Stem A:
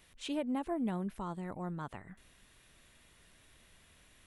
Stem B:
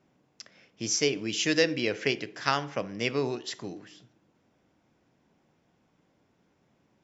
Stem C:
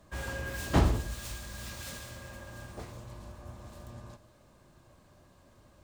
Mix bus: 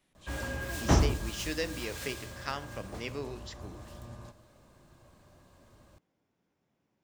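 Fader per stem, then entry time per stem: −12.5, −10.0, +0.5 decibels; 0.00, 0.00, 0.15 seconds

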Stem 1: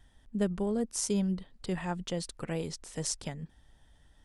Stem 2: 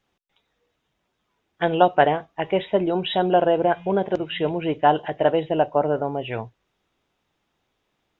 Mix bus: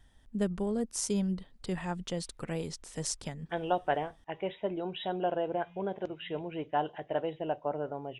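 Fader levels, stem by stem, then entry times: −1.0, −13.0 decibels; 0.00, 1.90 seconds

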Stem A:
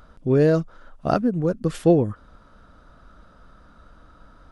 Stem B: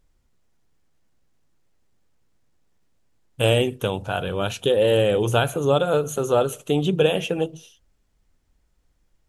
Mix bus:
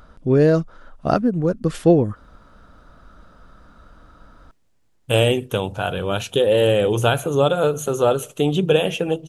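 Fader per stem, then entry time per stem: +2.5, +2.0 decibels; 0.00, 1.70 seconds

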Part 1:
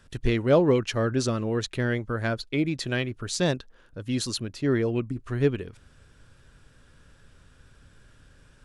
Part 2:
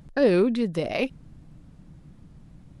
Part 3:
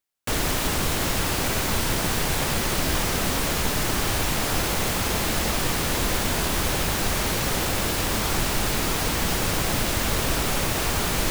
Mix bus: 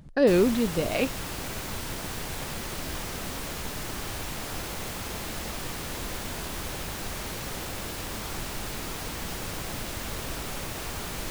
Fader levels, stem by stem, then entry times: muted, −0.5 dB, −10.5 dB; muted, 0.00 s, 0.00 s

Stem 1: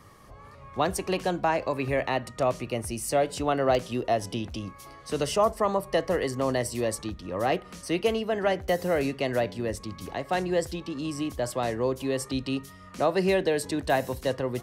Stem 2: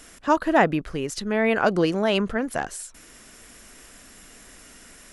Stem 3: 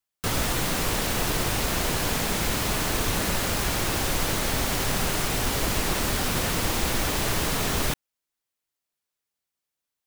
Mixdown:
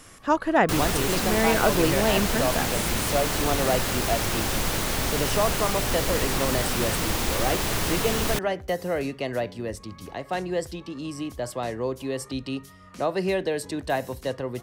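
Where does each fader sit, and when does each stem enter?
−1.5, −2.0, −0.5 decibels; 0.00, 0.00, 0.45 seconds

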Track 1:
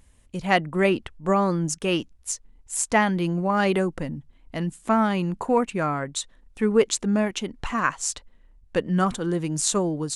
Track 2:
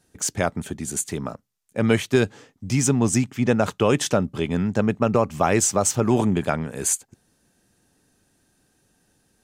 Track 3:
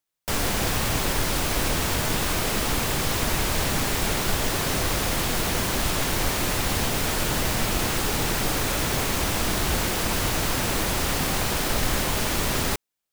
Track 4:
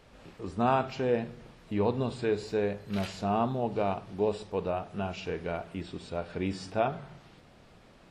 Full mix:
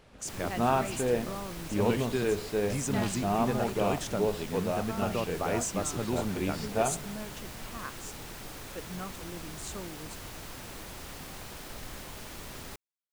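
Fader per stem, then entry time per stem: −18.5, −13.0, −18.5, −0.5 decibels; 0.00, 0.00, 0.00, 0.00 seconds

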